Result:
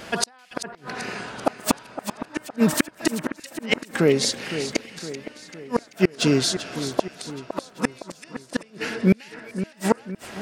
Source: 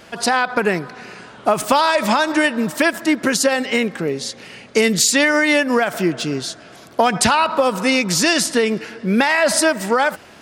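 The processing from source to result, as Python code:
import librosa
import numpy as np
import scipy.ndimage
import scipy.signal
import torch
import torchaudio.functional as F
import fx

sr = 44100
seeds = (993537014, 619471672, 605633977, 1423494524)

y = fx.gate_flip(x, sr, shuts_db=-9.0, range_db=-39)
y = fx.echo_split(y, sr, split_hz=2100.0, low_ms=512, high_ms=387, feedback_pct=52, wet_db=-11.0)
y = y * librosa.db_to_amplitude(4.0)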